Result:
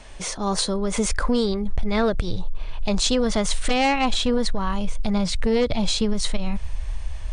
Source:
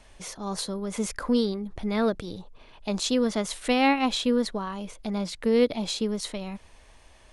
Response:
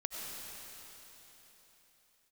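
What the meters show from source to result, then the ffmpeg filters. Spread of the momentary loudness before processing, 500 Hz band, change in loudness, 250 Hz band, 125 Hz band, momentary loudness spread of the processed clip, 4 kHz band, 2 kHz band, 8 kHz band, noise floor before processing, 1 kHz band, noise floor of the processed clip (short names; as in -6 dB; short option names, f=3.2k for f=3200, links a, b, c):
14 LU, +2.5 dB, +3.5 dB, +2.5 dB, +8.5 dB, 11 LU, +6.0 dB, +4.0 dB, +7.5 dB, -54 dBFS, +4.0 dB, -31 dBFS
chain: -af "asubboost=boost=12:cutoff=83,aeval=exprs='0.355*sin(PI/2*2*val(0)/0.355)':c=same,acompressor=threshold=-16dB:ratio=6" -ar 22050 -c:a libmp3lame -b:a 96k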